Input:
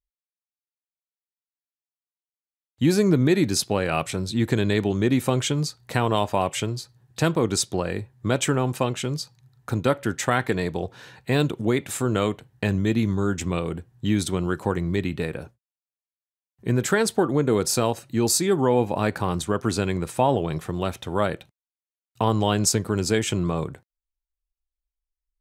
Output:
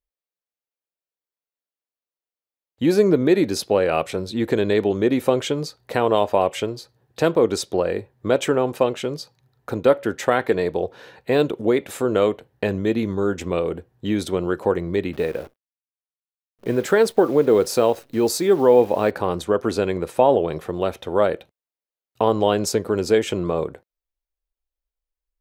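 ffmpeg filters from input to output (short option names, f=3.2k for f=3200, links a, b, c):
-filter_complex "[0:a]asettb=1/sr,asplit=3[a][b][c];[a]atrim=end=15.134[d];[b]atrim=start=15.13:end=19.11,asetpts=PTS-STARTPTS,afade=t=in:d=0.004:c=qsin,afade=t=out:st=3.976:d=0.004:c=qsin,acrusher=bits=8:dc=4:mix=0:aa=0.000001[e];[c]atrim=start=19.106[f];[d][e]acrossfade=d=0.004:c1=hsin:c2=qsin[g];[g][f]acrossfade=d=0.004:c1=qsin:c2=hsin,equalizer=f=125:t=o:w=1:g=-8,equalizer=f=500:t=o:w=1:g=9,equalizer=f=8k:t=o:w=1:g=-7"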